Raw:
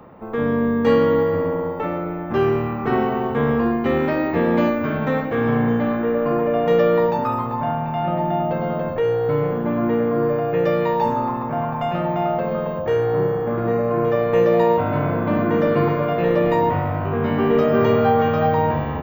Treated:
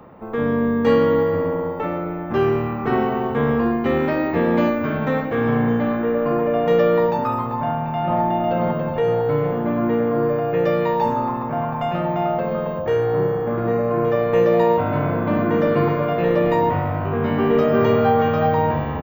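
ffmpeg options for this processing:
-filter_complex "[0:a]asplit=2[a][b];[b]afade=t=in:st=7.59:d=0.01,afade=t=out:st=8.21:d=0.01,aecho=0:1:500|1000|1500|2000|2500|3000|3500|4000:0.668344|0.367589|0.202174|0.111196|0.0611576|0.0336367|0.0185002|0.0101751[c];[a][c]amix=inputs=2:normalize=0"

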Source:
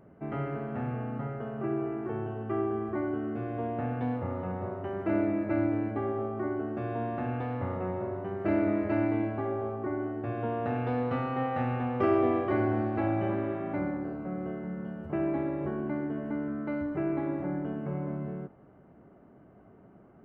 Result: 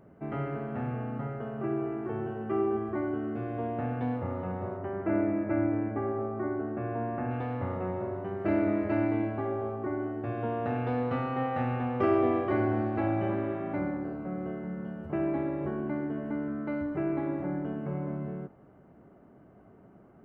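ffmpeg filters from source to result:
-filter_complex "[0:a]asettb=1/sr,asplit=3[a][b][c];[a]atrim=end=2.194[d];[b]atrim=start=2.19:end=2.77,asetpts=PTS-STARTPTS,afade=t=in:d=0.004:c=qsin,afade=t=out:st=0.576:d=0.004:c=qsin,asplit=2[e][f];[f]adelay=13,volume=-5dB[g];[e][g]amix=inputs=2:normalize=0,atrim=end_sample=25578[h];[c]atrim=start=2.766[i];[d][h]acrossfade=d=0.004:c1=hsin:c2=qsin[j];[j][i]acrossfade=d=0.004:c1=qsin:c2=hsin,asettb=1/sr,asplit=3[k][l][m];[k]atrim=end=4.774[n];[l]atrim=start=4.77:end=7.31,asetpts=PTS-STARTPTS,afade=t=in:d=0.004:c=qsin,afade=t=out:st=2.536:d=0.004:c=qsin,lowpass=f=2.4k:w=0.5412,lowpass=f=2.4k:w=1.3066[o];[m]atrim=start=7.306[p];[n][o]acrossfade=d=0.004:c1=hsin:c2=qsin[q];[q][p]acrossfade=d=0.004:c1=qsin:c2=hsin"

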